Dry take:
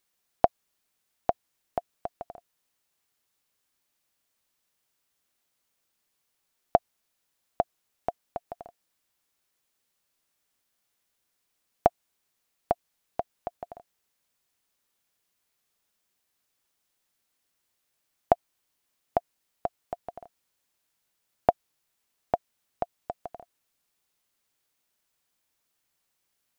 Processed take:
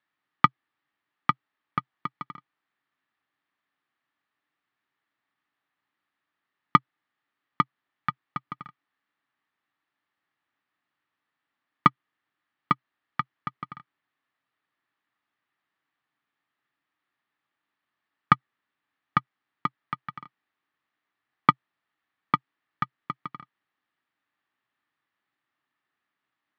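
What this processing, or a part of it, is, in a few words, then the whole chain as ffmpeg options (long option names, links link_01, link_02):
ring modulator pedal into a guitar cabinet: -af "aeval=exprs='val(0)*sgn(sin(2*PI*530*n/s))':channel_layout=same,highpass=110,equalizer=frequency=130:width_type=q:width=4:gain=5,equalizer=frequency=290:width_type=q:width=4:gain=8,equalizer=frequency=500:width_type=q:width=4:gain=-5,equalizer=frequency=830:width_type=q:width=4:gain=4,equalizer=frequency=1200:width_type=q:width=4:gain=9,equalizer=frequency=1800:width_type=q:width=4:gain=10,lowpass=frequency=3600:width=0.5412,lowpass=frequency=3600:width=1.3066,volume=-3.5dB"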